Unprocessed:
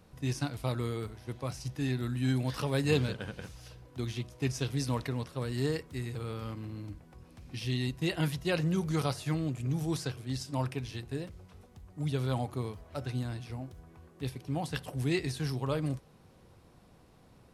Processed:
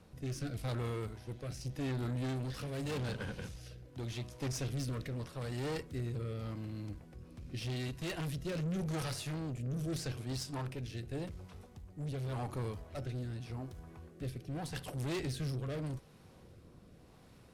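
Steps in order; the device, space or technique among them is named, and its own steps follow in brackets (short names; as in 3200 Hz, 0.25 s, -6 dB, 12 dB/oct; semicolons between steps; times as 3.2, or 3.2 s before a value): overdriven rotary cabinet (tube stage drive 37 dB, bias 0.4; rotary speaker horn 0.85 Hz); gain +4 dB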